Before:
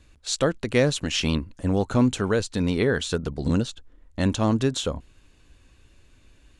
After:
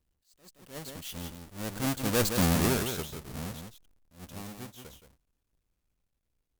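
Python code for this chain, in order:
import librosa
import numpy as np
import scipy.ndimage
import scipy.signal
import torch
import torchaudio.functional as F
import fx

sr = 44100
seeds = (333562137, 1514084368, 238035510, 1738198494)

p1 = fx.halfwave_hold(x, sr)
p2 = fx.doppler_pass(p1, sr, speed_mps=26, closest_m=4.5, pass_at_s=2.36)
p3 = fx.high_shelf(p2, sr, hz=6100.0, db=11.0)
p4 = p3 + fx.echo_single(p3, sr, ms=171, db=-7.0, dry=0)
p5 = fx.attack_slew(p4, sr, db_per_s=170.0)
y = p5 * 10.0 ** (-5.0 / 20.0)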